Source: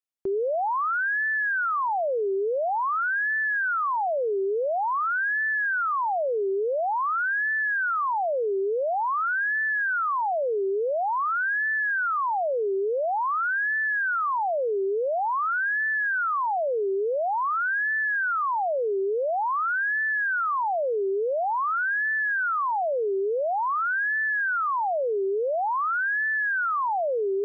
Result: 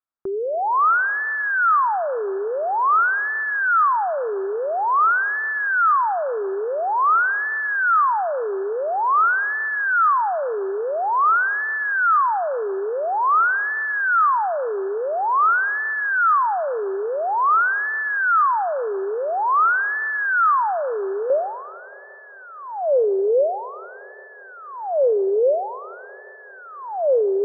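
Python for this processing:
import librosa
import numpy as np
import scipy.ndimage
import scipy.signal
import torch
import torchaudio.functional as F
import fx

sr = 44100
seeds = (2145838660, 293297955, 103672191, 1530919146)

y = fx.lowpass_res(x, sr, hz=fx.steps((0.0, 1300.0), (21.3, 540.0)), q=3.1)
y = fx.rev_schroeder(y, sr, rt60_s=3.6, comb_ms=26, drr_db=16.5)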